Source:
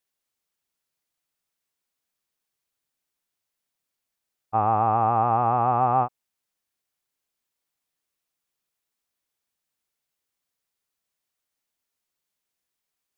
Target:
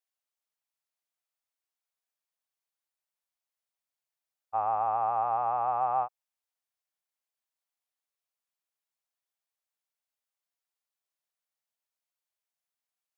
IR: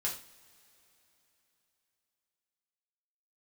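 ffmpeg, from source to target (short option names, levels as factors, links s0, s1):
-af "lowshelf=f=430:t=q:w=1.5:g=-12.5,volume=0.355"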